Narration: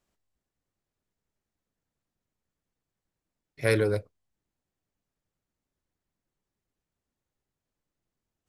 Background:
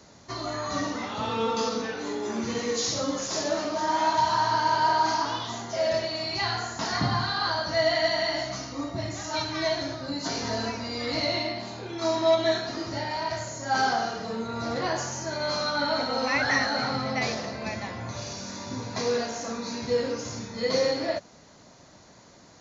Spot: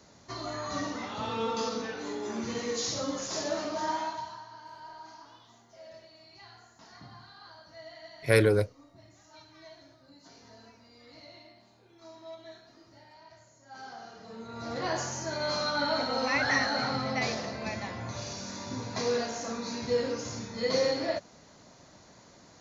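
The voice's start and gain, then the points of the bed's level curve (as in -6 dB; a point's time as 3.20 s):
4.65 s, +2.0 dB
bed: 3.89 s -4.5 dB
4.47 s -24 dB
13.67 s -24 dB
14.94 s -2.5 dB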